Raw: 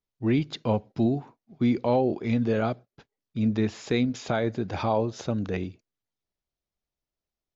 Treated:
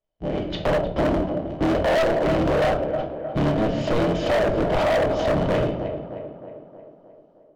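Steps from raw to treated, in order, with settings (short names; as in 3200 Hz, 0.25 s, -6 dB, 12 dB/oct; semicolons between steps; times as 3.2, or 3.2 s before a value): cycle switcher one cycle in 3, inverted; high shelf 5200 Hz -9.5 dB; compressor 6:1, threshold -32 dBFS, peak gain reduction 12.5 dB; air absorption 120 m; shoebox room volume 97 m³, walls mixed, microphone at 0.6 m; AGC gain up to 12 dB; small resonant body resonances 620/3000 Hz, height 14 dB, ringing for 25 ms; on a send: tape echo 0.311 s, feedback 61%, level -10.5 dB, low-pass 2200 Hz; on the sum: hard clip -17.5 dBFS, distortion -6 dB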